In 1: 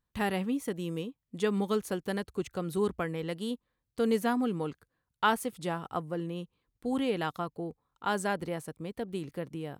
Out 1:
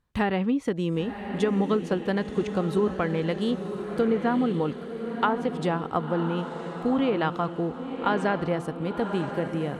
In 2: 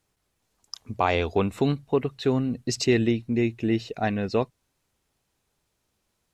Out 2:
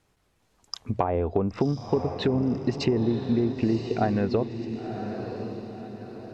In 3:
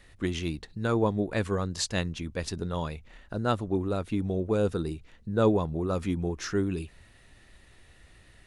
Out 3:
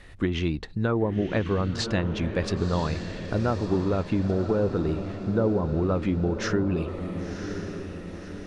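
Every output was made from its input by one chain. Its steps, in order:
treble ducked by the level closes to 800 Hz, closed at -19.5 dBFS; high shelf 4500 Hz -8.5 dB; compressor 5:1, threshold -29 dBFS; on a send: diffused feedback echo 1.044 s, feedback 46%, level -8 dB; on the sum: match loudness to -27 LUFS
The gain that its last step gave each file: +9.0, +7.5, +8.0 dB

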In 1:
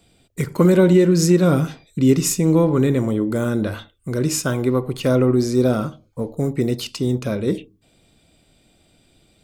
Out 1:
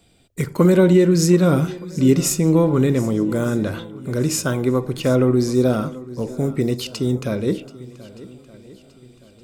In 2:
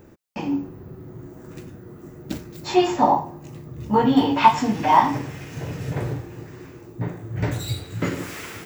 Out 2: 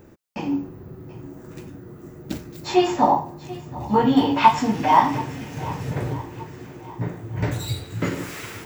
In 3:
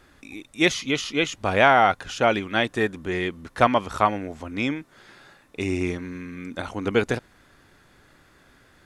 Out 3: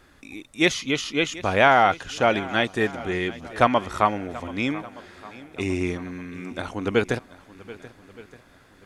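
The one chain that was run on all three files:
swung echo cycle 1.22 s, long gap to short 1.5:1, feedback 34%, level -18.5 dB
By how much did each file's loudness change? 0.0, 0.0, 0.0 LU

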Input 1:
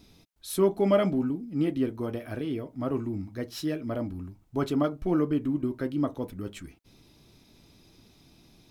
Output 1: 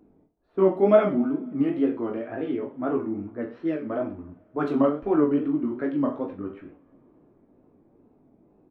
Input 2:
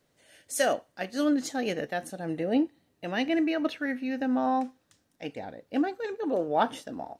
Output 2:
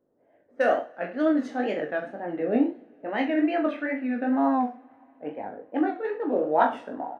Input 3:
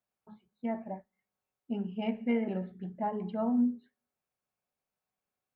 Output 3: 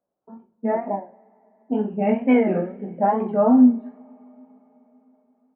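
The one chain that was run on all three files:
three-band isolator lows -15 dB, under 220 Hz, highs -22 dB, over 2400 Hz; low-pass opened by the level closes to 620 Hz, open at -25.5 dBFS; reverse bouncing-ball echo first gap 20 ms, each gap 1.1×, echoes 5; wow and flutter 110 cents; two-slope reverb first 0.54 s, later 4.6 s, from -19 dB, DRR 16 dB; normalise peaks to -6 dBFS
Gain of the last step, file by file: +3.0, +2.0, +13.5 dB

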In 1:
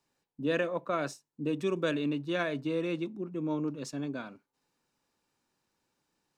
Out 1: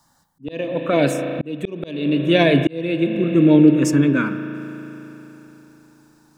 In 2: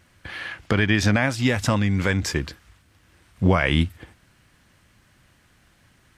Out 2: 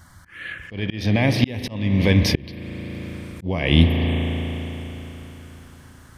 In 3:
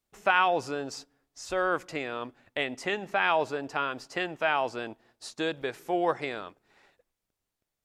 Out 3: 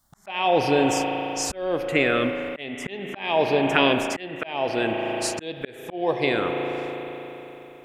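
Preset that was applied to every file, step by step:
envelope phaser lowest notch 430 Hz, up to 1400 Hz, full sweep at -26 dBFS; spring tank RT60 3.8 s, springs 36 ms, chirp 60 ms, DRR 8.5 dB; auto swell 0.716 s; normalise peaks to -2 dBFS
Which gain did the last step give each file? +21.5, +11.5, +18.0 dB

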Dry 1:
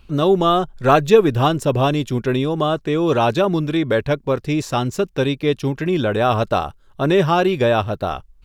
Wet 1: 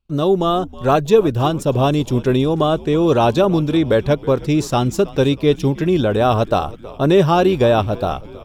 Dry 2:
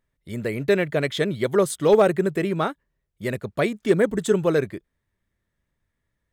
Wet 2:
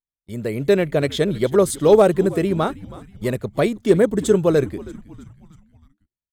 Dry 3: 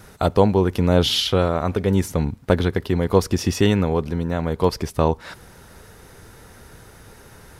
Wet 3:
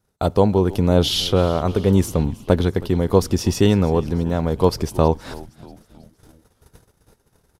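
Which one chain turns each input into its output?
gate -41 dBFS, range -26 dB; AGC gain up to 5 dB; bell 1900 Hz -6.5 dB 1.3 oct; frequency-shifting echo 0.319 s, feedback 53%, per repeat -100 Hz, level -19 dB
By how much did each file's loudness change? +1.5, +3.5, +1.5 LU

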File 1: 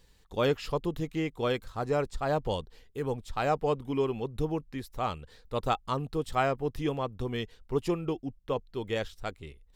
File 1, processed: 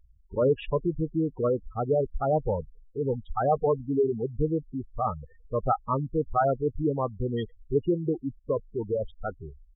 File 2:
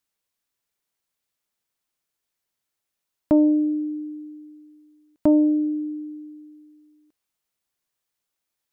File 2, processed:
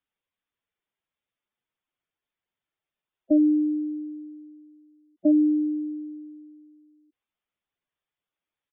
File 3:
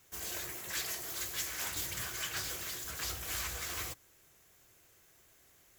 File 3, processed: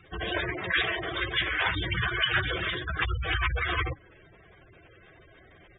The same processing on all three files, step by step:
downsampling 8000 Hz; spectral gate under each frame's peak -10 dB strong; normalise peaks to -12 dBFS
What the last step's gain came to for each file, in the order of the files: +5.0, -2.0, +17.5 dB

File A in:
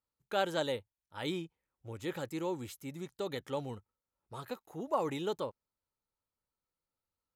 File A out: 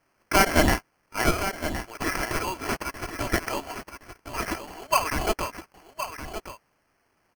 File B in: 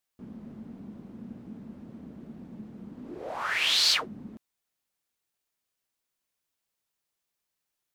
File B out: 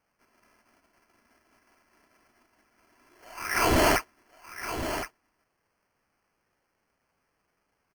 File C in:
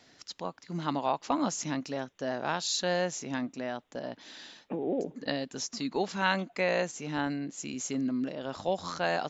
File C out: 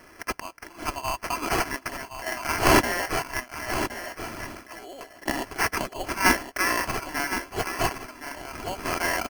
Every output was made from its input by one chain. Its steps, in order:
HPF 1400 Hz 12 dB/oct; high shelf 2200 Hz +7 dB; comb 3 ms, depth 58%; in parallel at -0.5 dB: level quantiser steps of 13 dB; on the sum: sample-rate reducer 3700 Hz, jitter 0%; wavefolder -9.5 dBFS; on a send: echo 1.067 s -10 dB; on the sum: match loudness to -27 LUFS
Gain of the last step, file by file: +13.0, -5.5, +3.0 dB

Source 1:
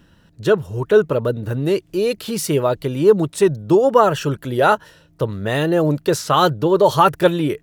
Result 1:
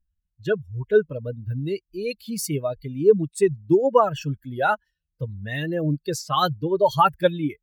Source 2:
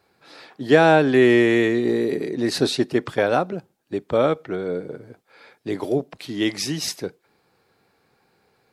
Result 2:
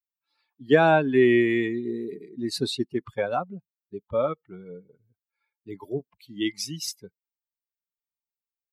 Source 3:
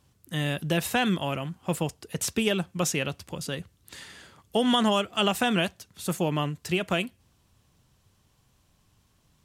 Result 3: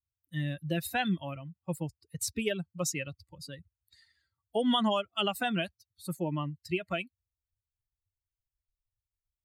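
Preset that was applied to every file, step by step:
per-bin expansion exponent 2; gain -1.5 dB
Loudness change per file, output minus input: -5.5, -4.0, -5.5 LU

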